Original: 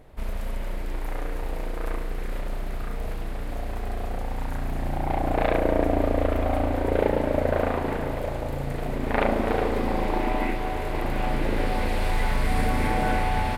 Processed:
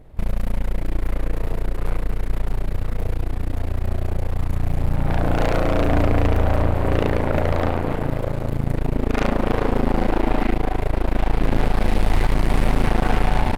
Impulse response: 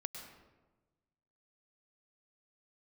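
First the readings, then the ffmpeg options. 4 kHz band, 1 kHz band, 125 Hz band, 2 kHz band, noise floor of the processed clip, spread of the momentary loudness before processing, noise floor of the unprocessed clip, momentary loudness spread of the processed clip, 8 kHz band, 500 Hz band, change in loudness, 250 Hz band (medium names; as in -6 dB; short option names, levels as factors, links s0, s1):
+3.0 dB, +1.0 dB, +8.0 dB, +1.5 dB, -30 dBFS, 11 LU, -30 dBFS, 8 LU, no reading, +1.5 dB, +4.0 dB, +4.5 dB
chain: -af "asoftclip=type=tanh:threshold=0.398,lowshelf=f=350:g=9.5,aeval=exprs='0.335*(cos(1*acos(clip(val(0)/0.335,-1,1)))-cos(1*PI/2))+0.106*(cos(4*acos(clip(val(0)/0.335,-1,1)))-cos(4*PI/2))':c=same,volume=0.75"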